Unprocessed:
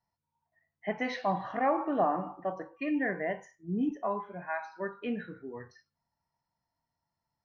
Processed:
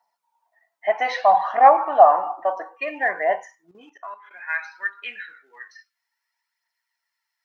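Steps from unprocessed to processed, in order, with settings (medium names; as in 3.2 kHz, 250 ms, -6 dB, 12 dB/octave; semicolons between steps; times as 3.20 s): phaser 0.6 Hz, delay 3.4 ms, feedback 38%; high-pass sweep 760 Hz -> 1.9 kHz, 3.43–4.39 s; 3.71–4.31 s: level held to a coarse grid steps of 14 dB; trim +8 dB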